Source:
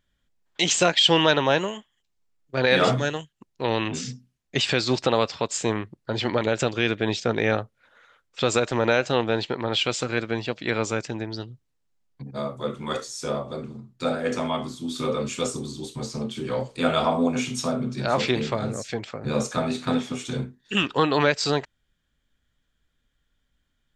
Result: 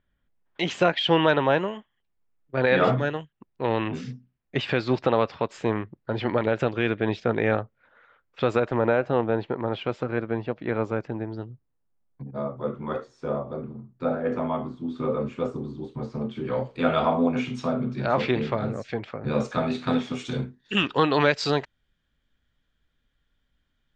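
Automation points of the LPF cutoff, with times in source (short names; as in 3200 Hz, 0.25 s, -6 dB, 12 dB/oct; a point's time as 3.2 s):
8.4 s 2100 Hz
8.96 s 1300 Hz
15.85 s 1300 Hz
16.68 s 2500 Hz
19.15 s 2500 Hz
20.15 s 4700 Hz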